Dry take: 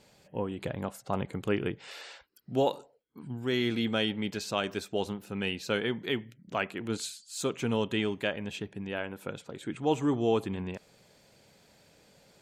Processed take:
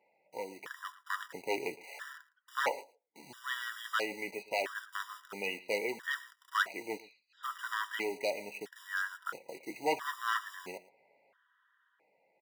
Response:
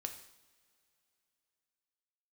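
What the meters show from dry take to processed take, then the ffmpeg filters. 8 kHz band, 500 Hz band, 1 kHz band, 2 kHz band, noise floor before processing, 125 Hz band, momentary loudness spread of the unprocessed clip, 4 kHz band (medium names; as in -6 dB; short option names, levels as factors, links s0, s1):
-5.5 dB, -7.5 dB, 0.0 dB, +2.0 dB, -63 dBFS, under -25 dB, 12 LU, -6.5 dB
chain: -filter_complex "[0:a]lowpass=f=1900:w=0.5412,lowpass=f=1900:w=1.3066,asplit=2[s0][s1];[s1]acrusher=bits=7:mix=0:aa=0.000001,volume=0.596[s2];[s0][s2]amix=inputs=2:normalize=0,aeval=exprs='0.126*(abs(mod(val(0)/0.126+3,4)-2)-1)':c=same,tiltshelf=f=900:g=-7,aecho=1:1:112:0.112,flanger=delay=5.9:depth=1.5:regen=-59:speed=0.32:shape=triangular,highpass=440,dynaudnorm=f=130:g=17:m=1.68,afftfilt=real='re*gt(sin(2*PI*0.75*pts/sr)*(1-2*mod(floor(b*sr/1024/970),2)),0)':imag='im*gt(sin(2*PI*0.75*pts/sr)*(1-2*mod(floor(b*sr/1024/970),2)),0)':win_size=1024:overlap=0.75"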